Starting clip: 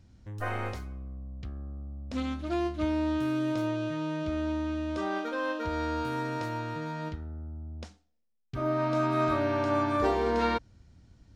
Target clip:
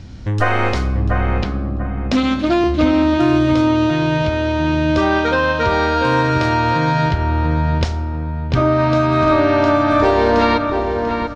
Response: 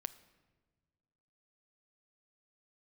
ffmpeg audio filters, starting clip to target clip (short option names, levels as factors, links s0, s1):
-filter_complex "[0:a]asplit=2[s0][s1];[1:a]atrim=start_sample=2205,lowpass=4900,highshelf=f=3300:g=7.5[s2];[s1][s2]afir=irnorm=-1:irlink=0,volume=5.62[s3];[s0][s3]amix=inputs=2:normalize=0,acompressor=threshold=0.1:ratio=6,asettb=1/sr,asplit=3[s4][s5][s6];[s4]atrim=end=1.434[s7];[s5]atrim=start=1.43:end=2.64,asetpts=PTS-STARTPTS,afade=t=in:d=0.004:c=qsin,afade=t=out:st=1.206:d=0.004:c=qsin,highpass=f=140:w=0.5412,highpass=f=140:w=1.3066[s8];[s6]atrim=start=2.636[s9];[s7][s8]acrossfade=d=0.004:c1=hsin:c2=qsin[s10];[s10][s9]acrossfade=d=0.004:c1=qsin:c2=hsin,asplit=2[s11][s12];[s12]adelay=692,lowpass=f=2000:p=1,volume=0.596,asplit=2[s13][s14];[s14]adelay=692,lowpass=f=2000:p=1,volume=0.35,asplit=2[s15][s16];[s16]adelay=692,lowpass=f=2000:p=1,volume=0.35,asplit=2[s17][s18];[s18]adelay=692,lowpass=f=2000:p=1,volume=0.35[s19];[s11][s13][s15][s17][s19]amix=inputs=5:normalize=0,volume=2.37"